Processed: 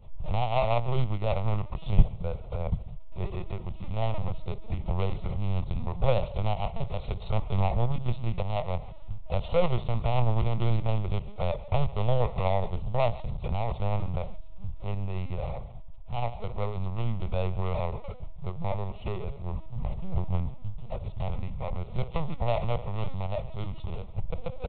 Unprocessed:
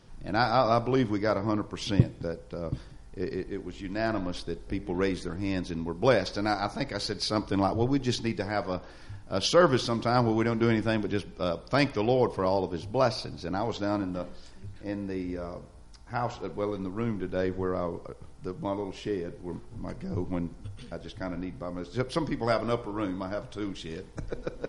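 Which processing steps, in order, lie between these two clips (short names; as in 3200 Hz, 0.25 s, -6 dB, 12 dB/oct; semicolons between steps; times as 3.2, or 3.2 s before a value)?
median filter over 41 samples; on a send: echo 0.139 s -20.5 dB; on the sum: LPC vocoder at 8 kHz pitch kept; bell 410 Hz -11.5 dB 1.1 oct; fixed phaser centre 680 Hz, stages 4; in parallel at 0 dB: compressor, threshold -41 dBFS, peak gain reduction 21.5 dB; on the sum: gain +6.5 dB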